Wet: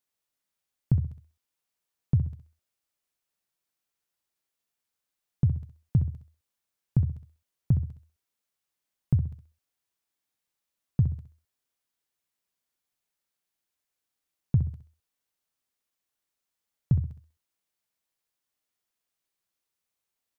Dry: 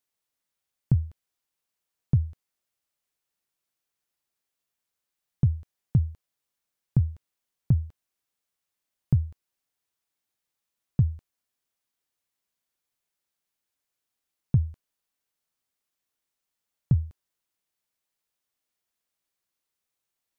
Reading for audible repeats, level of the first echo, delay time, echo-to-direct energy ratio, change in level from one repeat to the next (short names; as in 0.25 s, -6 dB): 3, -9.5 dB, 65 ms, -9.0 dB, -9.0 dB